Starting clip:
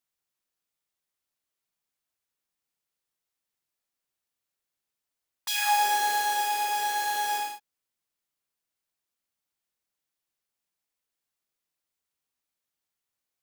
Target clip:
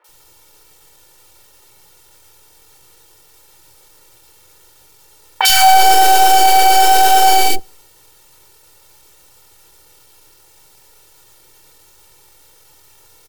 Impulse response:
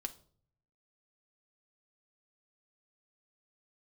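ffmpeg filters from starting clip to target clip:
-filter_complex "[0:a]aeval=exprs='if(lt(val(0),0),0.708*val(0),val(0))':channel_layout=same,acrossover=split=990[link_01][link_02];[link_01]acontrast=55[link_03];[link_03][link_02]amix=inputs=2:normalize=0,acrossover=split=480|2200[link_04][link_05][link_06];[link_06]adelay=40[link_07];[link_04]adelay=80[link_08];[link_08][link_05][link_07]amix=inputs=3:normalize=0,asetrate=40517,aresample=44100,aecho=1:1:2.2:0.94,acrusher=bits=8:mode=log:mix=0:aa=0.000001,atempo=1.1,asoftclip=type=tanh:threshold=-17dB,acompressor=threshold=-38dB:ratio=6,asplit=2[link_09][link_10];[1:a]atrim=start_sample=2205[link_11];[link_10][link_11]afir=irnorm=-1:irlink=0,volume=-12dB[link_12];[link_09][link_12]amix=inputs=2:normalize=0,alimiter=level_in=35.5dB:limit=-1dB:release=50:level=0:latency=1,volume=-1dB"

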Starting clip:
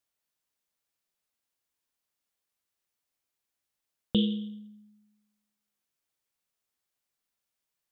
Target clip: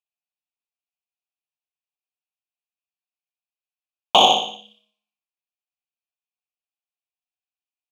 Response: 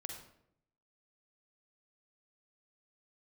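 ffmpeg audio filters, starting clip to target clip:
-filter_complex "[0:a]highshelf=frequency=1900:width_type=q:width=1.5:gain=13,acompressor=mode=upward:threshold=-42dB:ratio=2.5,agate=range=-47dB:threshold=-50dB:ratio=16:detection=peak,highpass=frequency=290:poles=1,aeval=exprs='0.562*(cos(1*acos(clip(val(0)/0.562,-1,1)))-cos(1*PI/2))+0.141*(cos(6*acos(clip(val(0)/0.562,-1,1)))-cos(6*PI/2))':channel_layout=same,asplit=3[link_01][link_02][link_03];[link_01]bandpass=frequency=730:width_type=q:width=8,volume=0dB[link_04];[link_02]bandpass=frequency=1090:width_type=q:width=8,volume=-6dB[link_05];[link_03]bandpass=frequency=2440:width_type=q:width=8,volume=-9dB[link_06];[link_04][link_05][link_06]amix=inputs=3:normalize=0,equalizer=frequency=910:width_type=o:width=0.38:gain=14.5,aecho=1:1:60|120|180|240|300|360:0.501|0.231|0.106|0.0488|0.0224|0.0103,alimiter=level_in=24dB:limit=-1dB:release=50:level=0:latency=1,volume=-1dB"

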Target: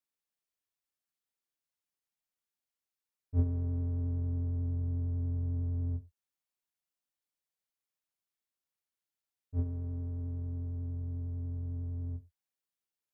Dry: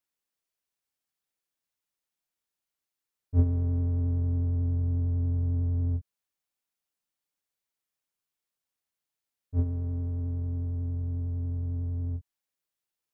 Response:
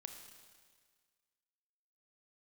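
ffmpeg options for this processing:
-filter_complex "[0:a]asplit=2[link_01][link_02];[1:a]atrim=start_sample=2205,atrim=end_sample=6174,asetrate=57330,aresample=44100[link_03];[link_02][link_03]afir=irnorm=-1:irlink=0,volume=0dB[link_04];[link_01][link_04]amix=inputs=2:normalize=0,volume=-8.5dB"

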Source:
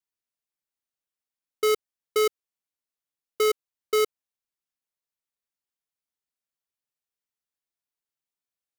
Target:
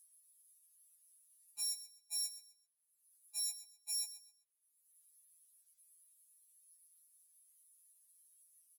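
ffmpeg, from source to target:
ffmpeg -i in.wav -af "bandpass=frequency=5800:width_type=q:width=13:csg=0,asetrate=80880,aresample=44100,atempo=0.545254,acompressor=mode=upward:threshold=-60dB:ratio=2.5,aecho=1:1:129|258|387:0.2|0.0519|0.0135,afftfilt=real='re*2.83*eq(mod(b,8),0)':imag='im*2.83*eq(mod(b,8),0)':win_size=2048:overlap=0.75,volume=15.5dB" out.wav

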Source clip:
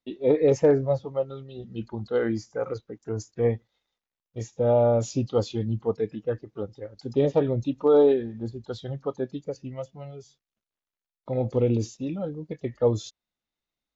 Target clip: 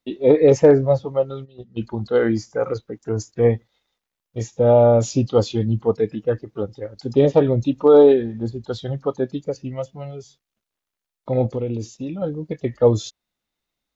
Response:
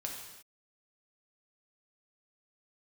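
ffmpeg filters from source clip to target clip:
-filter_complex "[0:a]asplit=3[link_01][link_02][link_03];[link_01]afade=type=out:start_time=1.44:duration=0.02[link_04];[link_02]agate=range=-15dB:threshold=-35dB:ratio=16:detection=peak,afade=type=in:start_time=1.44:duration=0.02,afade=type=out:start_time=1.86:duration=0.02[link_05];[link_03]afade=type=in:start_time=1.86:duration=0.02[link_06];[link_04][link_05][link_06]amix=inputs=3:normalize=0,asettb=1/sr,asplit=3[link_07][link_08][link_09];[link_07]atrim=end=11.464[link_10];[link_08]atrim=start=11.46:end=12.22,asetpts=PTS-STARTPTS,afade=type=in:duration=0.004:curve=qsin,afade=type=out:start_time=0.756:duration=0.004:curve=qsin,acompressor=threshold=-37dB:ratio=2[link_11];[link_09]atrim=start=12.216[link_12];[link_10][link_11]acrossfade=duration=0.004:curve1=hsin:curve2=qsin[link_13];[link_13][link_12]acrossfade=duration=0.004:curve1=qsin:curve2=hsin,volume=7dB"

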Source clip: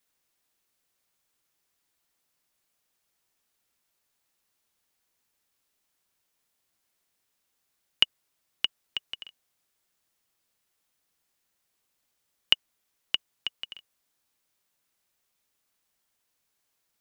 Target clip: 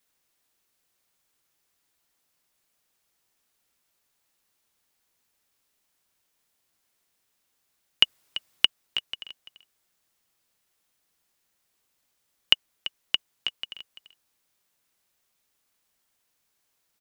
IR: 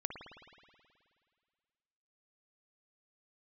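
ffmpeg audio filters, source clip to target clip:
-filter_complex "[0:a]asettb=1/sr,asplit=3[link_01][link_02][link_03];[link_01]atrim=end=8.034[link_04];[link_02]atrim=start=8.03:end=8.65,asetpts=PTS-STARTPTS,afade=type=in:duration=0.004:curve=qsin,afade=type=out:start_time=0.616:duration=0.004:curve=qsin,acontrast=65[link_05];[link_03]atrim=start=8.646[link_06];[link_04][link_05]acrossfade=duration=0.004:curve1=hsin:curve2=qsin[link_07];[link_07][link_06]acrossfade=duration=0.004:curve1=qsin:curve2=hsin,aecho=1:1:339:0.2,volume=2.5dB"

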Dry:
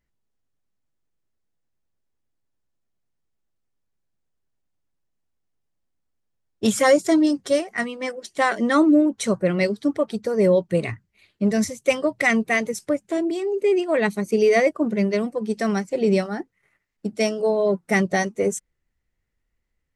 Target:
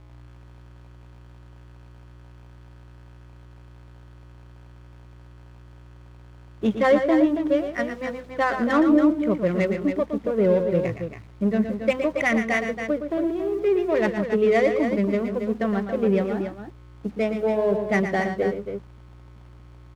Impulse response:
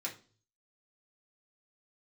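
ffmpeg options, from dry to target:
-filter_complex "[0:a]aresample=8000,aresample=44100,aeval=exprs='val(0)+0.00501*(sin(2*PI*60*n/s)+sin(2*PI*2*60*n/s)/2+sin(2*PI*3*60*n/s)/3+sin(2*PI*4*60*n/s)/4+sin(2*PI*5*60*n/s)/5)':channel_layout=same,adynamicsmooth=sensitivity=2.5:basefreq=820,acrusher=bits=7:mix=0:aa=0.000001,aemphasis=mode=reproduction:type=50kf,asplit=2[link_01][link_02];[link_02]aecho=0:1:116|140|278:0.376|0.112|0.398[link_03];[link_01][link_03]amix=inputs=2:normalize=0,volume=-2dB"

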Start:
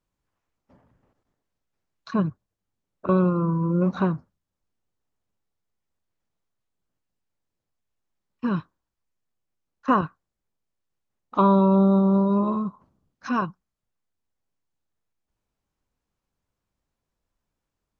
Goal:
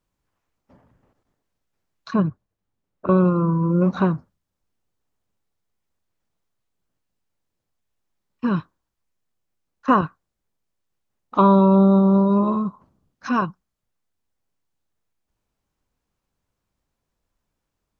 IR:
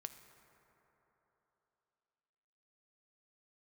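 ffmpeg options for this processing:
-filter_complex "[0:a]asettb=1/sr,asplit=3[link_01][link_02][link_03];[link_01]atrim=end=2.164[link_04];[link_02]atrim=start=2.16:end=3.25,asetpts=PTS-STARTPTS,afade=type=in:duration=0.004:curve=qsin,afade=type=out:start_time=1.086:duration=0.004:curve=qsin,highshelf=frequency=3700:gain=-8.5[link_05];[link_03]atrim=start=3.246[link_06];[link_04][link_05]acrossfade=duration=0.004:curve1=hsin:curve2=qsin[link_07];[link_07][link_06]acrossfade=duration=0.004:curve1=qsin:curve2=hsin,volume=3.5dB"

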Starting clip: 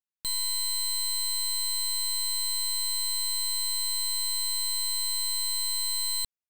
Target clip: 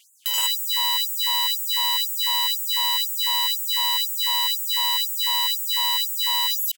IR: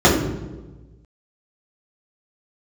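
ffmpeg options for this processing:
-filter_complex "[0:a]asplit=2[link_01][link_02];[link_02]aecho=0:1:75.8|116.6|148.7:0.251|0.794|0.501[link_03];[link_01][link_03]amix=inputs=2:normalize=0,aeval=exprs='(mod(59.6*val(0)+1,2)-1)/59.6':channel_layout=same,aemphasis=mode=production:type=75fm,aeval=exprs='abs(val(0))':channel_layout=same,asplit=2[link_04][link_05];[link_05]adelay=49,volume=-3dB[link_06];[link_04][link_06]amix=inputs=2:normalize=0,dynaudnorm=framelen=440:gausssize=5:maxgain=6dB,equalizer=frequency=1600:width_type=o:width=0.33:gain=4,equalizer=frequency=3150:width_type=o:width=0.33:gain=12,equalizer=frequency=8000:width_type=o:width=0.33:gain=3,areverse,acompressor=threshold=-34dB:ratio=10,areverse,asetrate=42336,aresample=44100,bandreject=frequency=60:width_type=h:width=6,bandreject=frequency=120:width_type=h:width=6,bandreject=frequency=180:width_type=h:width=6,bandreject=frequency=240:width_type=h:width=6,bandreject=frequency=300:width_type=h:width=6,bandreject=frequency=360:width_type=h:width=6,bandreject=frequency=420:width_type=h:width=6,bandreject=frequency=480:width_type=h:width=6,alimiter=level_in=33dB:limit=-1dB:release=50:level=0:latency=1,afftfilt=real='re*gte(b*sr/1024,370*pow(6900/370,0.5+0.5*sin(2*PI*2*pts/sr)))':imag='im*gte(b*sr/1024,370*pow(6900/370,0.5+0.5*sin(2*PI*2*pts/sr)))':win_size=1024:overlap=0.75,volume=-9dB"

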